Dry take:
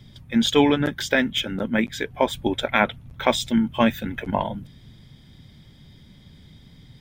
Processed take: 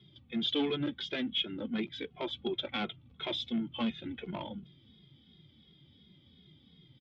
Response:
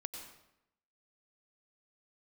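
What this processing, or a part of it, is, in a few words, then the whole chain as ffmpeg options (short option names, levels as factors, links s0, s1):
barber-pole flanger into a guitar amplifier: -filter_complex "[0:a]asplit=2[s0][s1];[s1]adelay=2.4,afreqshift=-2.8[s2];[s0][s2]amix=inputs=2:normalize=1,asoftclip=type=tanh:threshold=0.112,highpass=98,equalizer=f=110:t=q:w=4:g=-6,equalizer=f=340:t=q:w=4:g=6,equalizer=f=630:t=q:w=4:g=-6,equalizer=f=960:t=q:w=4:g=-6,equalizer=f=1700:t=q:w=4:g=-9,equalizer=f=3300:t=q:w=4:g=8,lowpass=f=4000:w=0.5412,lowpass=f=4000:w=1.3066,volume=0.422"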